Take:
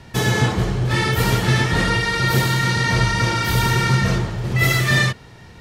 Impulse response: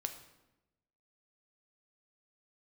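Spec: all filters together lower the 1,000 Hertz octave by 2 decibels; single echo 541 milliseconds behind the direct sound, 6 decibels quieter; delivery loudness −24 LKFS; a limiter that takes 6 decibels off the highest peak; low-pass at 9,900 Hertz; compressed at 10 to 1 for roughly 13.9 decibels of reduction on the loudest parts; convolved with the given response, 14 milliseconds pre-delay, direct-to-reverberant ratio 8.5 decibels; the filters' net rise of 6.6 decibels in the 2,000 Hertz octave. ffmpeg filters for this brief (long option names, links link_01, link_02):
-filter_complex "[0:a]lowpass=9900,equalizer=frequency=1000:width_type=o:gain=-7,equalizer=frequency=2000:width_type=o:gain=9,acompressor=threshold=-23dB:ratio=10,alimiter=limit=-19.5dB:level=0:latency=1,aecho=1:1:541:0.501,asplit=2[link_01][link_02];[1:a]atrim=start_sample=2205,adelay=14[link_03];[link_02][link_03]afir=irnorm=-1:irlink=0,volume=-8dB[link_04];[link_01][link_04]amix=inputs=2:normalize=0,volume=2dB"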